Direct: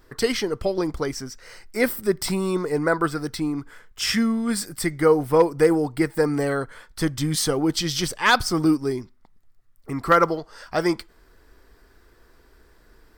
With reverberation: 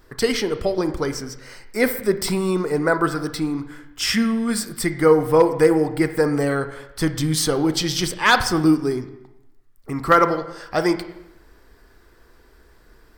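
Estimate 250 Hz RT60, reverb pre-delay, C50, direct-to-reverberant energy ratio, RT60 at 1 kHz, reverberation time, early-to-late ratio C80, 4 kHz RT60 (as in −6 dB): 0.90 s, 31 ms, 11.0 dB, 9.0 dB, 0.85 s, 0.85 s, 13.0 dB, 0.80 s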